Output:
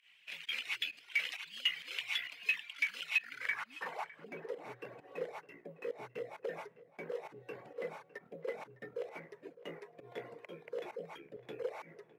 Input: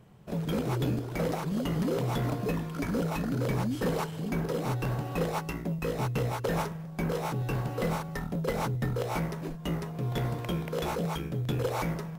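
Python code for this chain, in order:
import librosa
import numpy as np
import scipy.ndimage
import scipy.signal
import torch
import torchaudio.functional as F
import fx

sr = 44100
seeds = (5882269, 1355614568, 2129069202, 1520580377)

p1 = scipy.signal.sosfilt(scipy.signal.butter(2, 97.0, 'highpass', fs=sr, output='sos'), x)
p2 = librosa.effects.preemphasis(p1, coef=0.9, zi=[0.0])
p3 = fx.dereverb_blind(p2, sr, rt60_s=1.0)
p4 = fx.peak_eq(p3, sr, hz=2100.0, db=14.5, octaves=1.1)
p5 = fx.notch(p4, sr, hz=1300.0, q=25.0)
p6 = fx.rider(p5, sr, range_db=4, speed_s=0.5)
p7 = p5 + (p6 * 10.0 ** (-0.5 / 20.0))
p8 = fx.filter_sweep_bandpass(p7, sr, from_hz=2800.0, to_hz=470.0, start_s=3.15, end_s=4.3, q=3.3)
p9 = fx.volume_shaper(p8, sr, bpm=132, per_beat=1, depth_db=-19, release_ms=116.0, shape='fast start')
p10 = p9 + fx.echo_filtered(p9, sr, ms=607, feedback_pct=42, hz=2600.0, wet_db=-17.5, dry=0)
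y = p10 * 10.0 ** (7.0 / 20.0)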